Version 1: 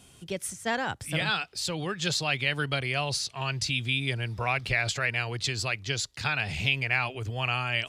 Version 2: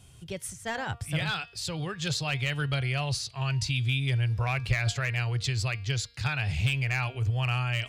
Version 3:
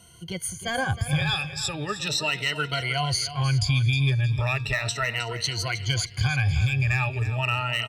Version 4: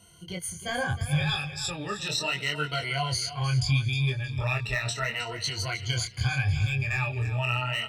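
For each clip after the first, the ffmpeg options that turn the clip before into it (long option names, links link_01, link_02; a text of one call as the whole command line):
ffmpeg -i in.wav -af "volume=17.5dB,asoftclip=hard,volume=-17.5dB,lowshelf=frequency=160:width_type=q:width=1.5:gain=8.5,bandreject=frequency=234.3:width_type=h:width=4,bandreject=frequency=468.6:width_type=h:width=4,bandreject=frequency=702.9:width_type=h:width=4,bandreject=frequency=937.2:width_type=h:width=4,bandreject=frequency=1171.5:width_type=h:width=4,bandreject=frequency=1405.8:width_type=h:width=4,bandreject=frequency=1640.1:width_type=h:width=4,bandreject=frequency=1874.4:width_type=h:width=4,bandreject=frequency=2108.7:width_type=h:width=4,bandreject=frequency=2343:width_type=h:width=4,bandreject=frequency=2577.3:width_type=h:width=4,bandreject=frequency=2811.6:width_type=h:width=4,bandreject=frequency=3045.9:width_type=h:width=4,bandreject=frequency=3280.2:width_type=h:width=4,bandreject=frequency=3514.5:width_type=h:width=4,bandreject=frequency=3748.8:width_type=h:width=4,bandreject=frequency=3983.1:width_type=h:width=4,bandreject=frequency=4217.4:width_type=h:width=4,bandreject=frequency=4451.7:width_type=h:width=4,bandreject=frequency=4686:width_type=h:width=4,bandreject=frequency=4920.3:width_type=h:width=4,bandreject=frequency=5154.6:width_type=h:width=4,volume=-3dB" out.wav
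ffmpeg -i in.wav -af "afftfilt=real='re*pow(10,20/40*sin(2*PI*(1.9*log(max(b,1)*sr/1024/100)/log(2)-(0.37)*(pts-256)/sr)))':imag='im*pow(10,20/40*sin(2*PI*(1.9*log(max(b,1)*sr/1024/100)/log(2)-(0.37)*(pts-256)/sr)))':win_size=1024:overlap=0.75,acompressor=threshold=-21dB:ratio=6,aecho=1:1:313|626|939:0.237|0.0806|0.0274,volume=1.5dB" out.wav
ffmpeg -i in.wav -af "flanger=delay=20:depth=4.9:speed=0.74" out.wav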